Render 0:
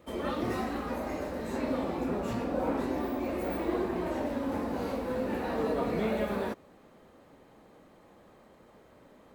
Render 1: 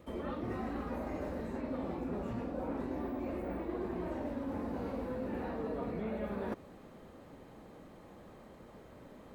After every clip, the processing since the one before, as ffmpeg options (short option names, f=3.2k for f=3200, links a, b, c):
-filter_complex "[0:a]acrossover=split=2700[a][b];[b]acompressor=threshold=-58dB:ratio=4:attack=1:release=60[c];[a][c]amix=inputs=2:normalize=0,lowshelf=f=260:g=6.5,areverse,acompressor=threshold=-37dB:ratio=5,areverse,volume=1dB"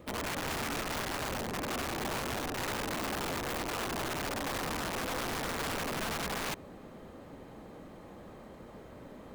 -af "aeval=exprs='(mod(53.1*val(0)+1,2)-1)/53.1':c=same,volume=4.5dB"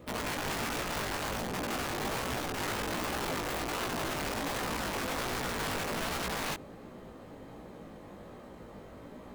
-af "flanger=delay=16:depth=4.3:speed=1.3,volume=4dB"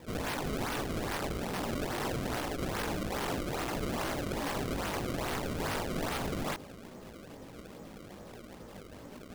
-af "acrusher=samples=29:mix=1:aa=0.000001:lfo=1:lforange=46.4:lforate=2.4"